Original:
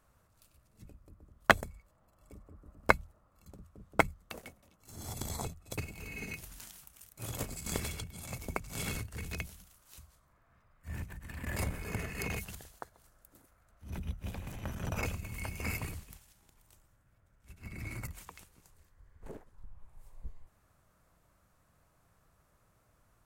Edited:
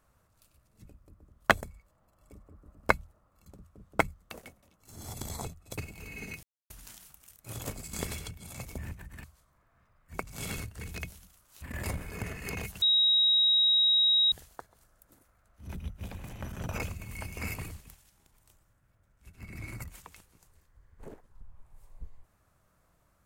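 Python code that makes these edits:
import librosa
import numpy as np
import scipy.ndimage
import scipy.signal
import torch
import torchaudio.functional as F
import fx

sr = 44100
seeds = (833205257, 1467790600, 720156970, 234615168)

y = fx.edit(x, sr, fx.insert_silence(at_s=6.43, length_s=0.27),
    fx.swap(start_s=8.51, length_s=1.48, other_s=10.89, other_length_s=0.46),
    fx.insert_tone(at_s=12.55, length_s=1.5, hz=3810.0, db=-20.5), tone=tone)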